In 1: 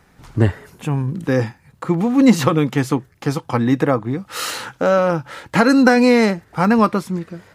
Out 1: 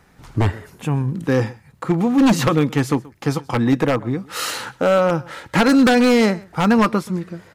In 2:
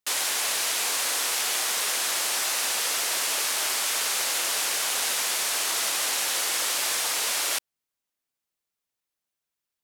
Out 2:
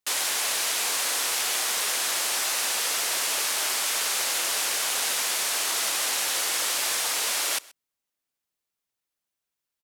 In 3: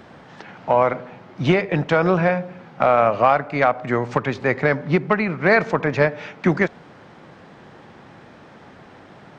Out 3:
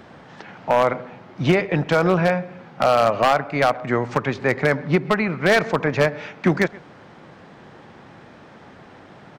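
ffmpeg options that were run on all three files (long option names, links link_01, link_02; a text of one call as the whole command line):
ffmpeg -i in.wav -af "aecho=1:1:129:0.0708,aeval=exprs='0.398*(abs(mod(val(0)/0.398+3,4)-2)-1)':channel_layout=same" out.wav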